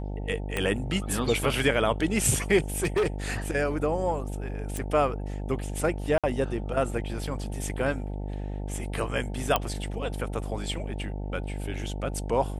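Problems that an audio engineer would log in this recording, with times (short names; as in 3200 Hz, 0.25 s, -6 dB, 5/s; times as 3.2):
buzz 50 Hz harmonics 18 -33 dBFS
0.57 pop -14 dBFS
2.78–3.08 clipped -20.5 dBFS
4.77 pop
6.18–6.24 gap 56 ms
9.56 pop -8 dBFS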